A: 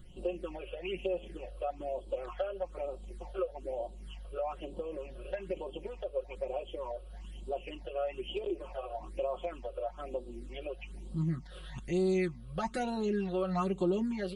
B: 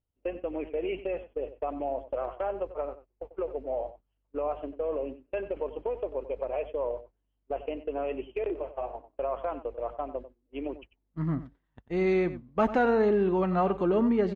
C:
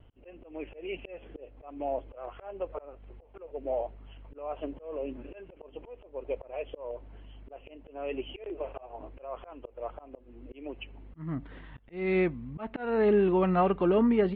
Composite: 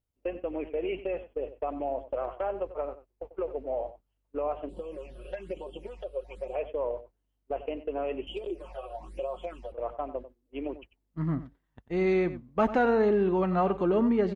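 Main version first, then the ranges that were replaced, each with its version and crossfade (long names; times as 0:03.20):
B
0:04.69–0:06.55: punch in from A
0:08.27–0:09.72: punch in from A
not used: C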